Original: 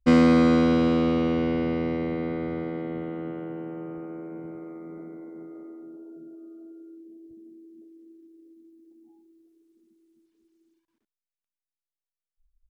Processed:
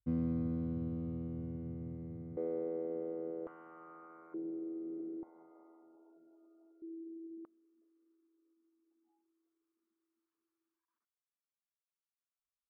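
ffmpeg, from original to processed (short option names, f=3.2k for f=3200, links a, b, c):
-af "asetnsamples=n=441:p=0,asendcmd='2.37 bandpass f 470;3.47 bandpass f 1200;4.34 bandpass f 350;5.23 bandpass f 900;6.82 bandpass f 340;7.45 bandpass f 1200',bandpass=f=110:t=q:w=4.3:csg=0"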